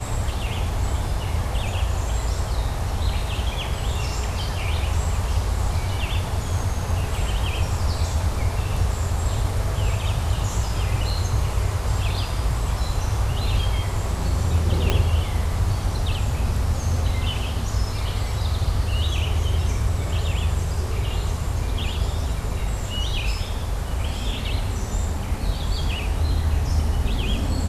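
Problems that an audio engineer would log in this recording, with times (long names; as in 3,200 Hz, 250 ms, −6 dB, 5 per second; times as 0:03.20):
0:14.90: click −6 dBFS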